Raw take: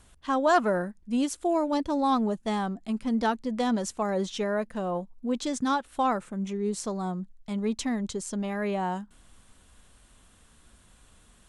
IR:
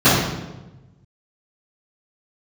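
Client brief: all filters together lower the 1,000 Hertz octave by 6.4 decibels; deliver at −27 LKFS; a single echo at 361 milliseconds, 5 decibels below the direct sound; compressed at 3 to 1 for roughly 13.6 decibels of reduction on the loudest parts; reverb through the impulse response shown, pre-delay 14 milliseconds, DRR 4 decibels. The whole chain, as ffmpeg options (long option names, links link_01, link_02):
-filter_complex "[0:a]equalizer=frequency=1000:width_type=o:gain=-9,acompressor=threshold=-42dB:ratio=3,aecho=1:1:361:0.562,asplit=2[link_01][link_02];[1:a]atrim=start_sample=2205,adelay=14[link_03];[link_02][link_03]afir=irnorm=-1:irlink=0,volume=-30.5dB[link_04];[link_01][link_04]amix=inputs=2:normalize=0,volume=10dB"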